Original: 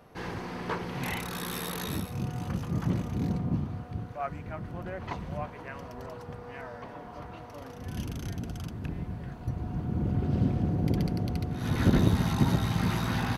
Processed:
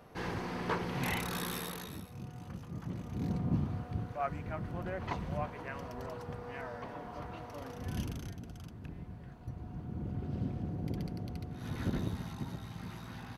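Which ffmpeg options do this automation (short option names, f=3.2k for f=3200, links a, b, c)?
-af "volume=10dB,afade=t=out:st=1.36:d=0.55:silence=0.281838,afade=t=in:st=2.94:d=0.71:silence=0.281838,afade=t=out:st=7.95:d=0.41:silence=0.354813,afade=t=out:st=11.63:d=0.85:silence=0.473151"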